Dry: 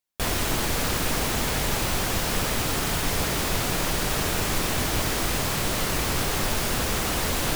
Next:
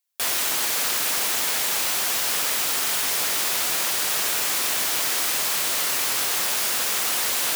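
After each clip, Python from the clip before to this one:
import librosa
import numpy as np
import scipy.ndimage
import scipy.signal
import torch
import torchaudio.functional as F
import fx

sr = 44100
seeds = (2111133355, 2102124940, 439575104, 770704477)

y = fx.highpass(x, sr, hz=640.0, slope=6)
y = fx.tilt_eq(y, sr, slope=2.0)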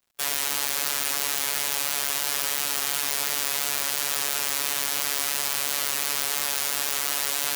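y = fx.robotise(x, sr, hz=142.0)
y = fx.dmg_crackle(y, sr, seeds[0], per_s=190.0, level_db=-53.0)
y = F.gain(torch.from_numpy(y), -1.0).numpy()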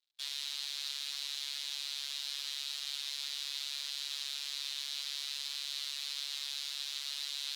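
y = fx.bandpass_q(x, sr, hz=3900.0, q=4.1)
y = F.gain(torch.from_numpy(y), -2.0).numpy()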